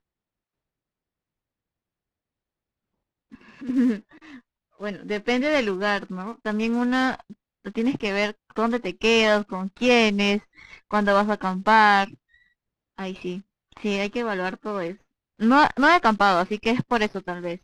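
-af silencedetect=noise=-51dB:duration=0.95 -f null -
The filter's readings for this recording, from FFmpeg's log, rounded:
silence_start: 0.00
silence_end: 3.32 | silence_duration: 3.32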